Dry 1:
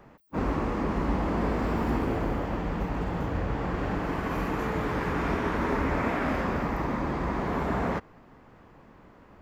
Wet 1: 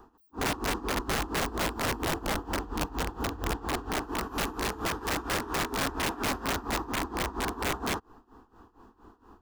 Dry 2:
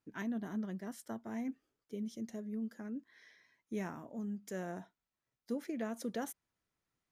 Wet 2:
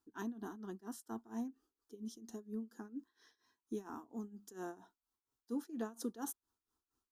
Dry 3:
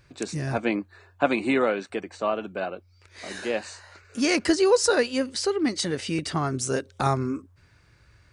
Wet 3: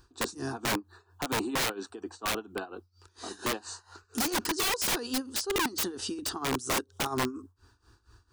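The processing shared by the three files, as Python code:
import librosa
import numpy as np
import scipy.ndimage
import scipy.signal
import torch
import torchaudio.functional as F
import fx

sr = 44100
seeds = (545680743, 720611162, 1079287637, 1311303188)

y = fx.fixed_phaser(x, sr, hz=580.0, stages=6)
y = y * (1.0 - 0.86 / 2.0 + 0.86 / 2.0 * np.cos(2.0 * np.pi * 4.3 * (np.arange(len(y)) / sr)))
y = (np.mod(10.0 ** (27.0 / 20.0) * y + 1.0, 2.0) - 1.0) / 10.0 ** (27.0 / 20.0)
y = y * librosa.db_to_amplitude(4.0)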